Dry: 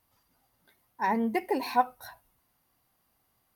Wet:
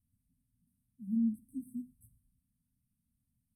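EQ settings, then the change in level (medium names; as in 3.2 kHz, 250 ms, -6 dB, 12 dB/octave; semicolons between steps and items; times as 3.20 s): brick-wall FIR band-stop 270–7900 Hz; distance through air 70 m; 0.0 dB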